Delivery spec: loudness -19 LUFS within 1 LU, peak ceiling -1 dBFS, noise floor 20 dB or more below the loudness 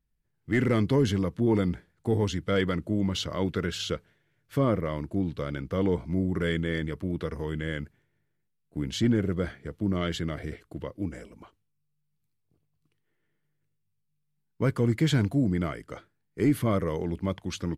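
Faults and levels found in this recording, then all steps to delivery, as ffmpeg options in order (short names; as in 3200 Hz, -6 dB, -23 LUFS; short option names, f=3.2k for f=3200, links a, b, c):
loudness -28.5 LUFS; peak -14.0 dBFS; loudness target -19.0 LUFS
-> -af "volume=9.5dB"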